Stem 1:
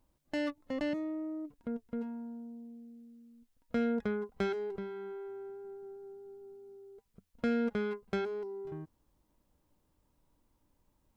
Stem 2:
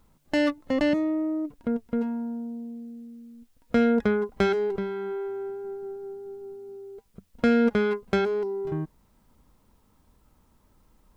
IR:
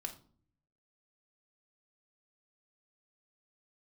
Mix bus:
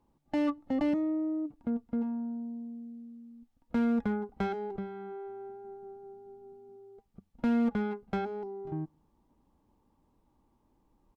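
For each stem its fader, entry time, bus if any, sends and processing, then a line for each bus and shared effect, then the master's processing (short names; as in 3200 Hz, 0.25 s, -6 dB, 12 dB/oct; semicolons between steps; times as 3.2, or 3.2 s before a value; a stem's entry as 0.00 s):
-1.5 dB, 0.00 s, send -17 dB, high shelf 5300 Hz -8.5 dB
-1.0 dB, 0.5 ms, no send, rippled Chebyshev low-pass 1200 Hz, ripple 9 dB; low shelf 310 Hz -2.5 dB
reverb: on, RT60 0.50 s, pre-delay 3 ms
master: one-sided clip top -24.5 dBFS, bottom -22 dBFS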